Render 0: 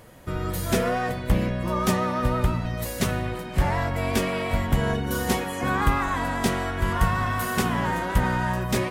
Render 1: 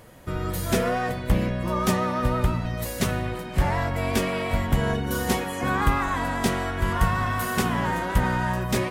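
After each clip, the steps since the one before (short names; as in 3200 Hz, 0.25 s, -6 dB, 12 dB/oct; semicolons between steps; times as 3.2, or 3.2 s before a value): nothing audible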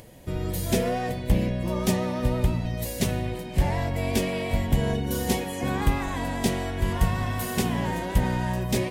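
bell 1300 Hz -13 dB 0.76 oct; upward compressor, threshold -45 dBFS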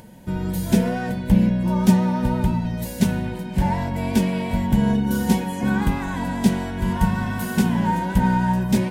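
small resonant body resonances 200/910/1500 Hz, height 15 dB, ringing for 75 ms; gain -1 dB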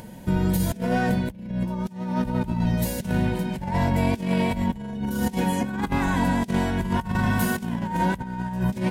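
negative-ratio compressor -24 dBFS, ratio -0.5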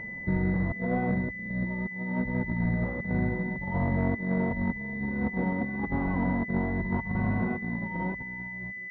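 ending faded out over 1.26 s; pulse-width modulation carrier 2000 Hz; gain -4.5 dB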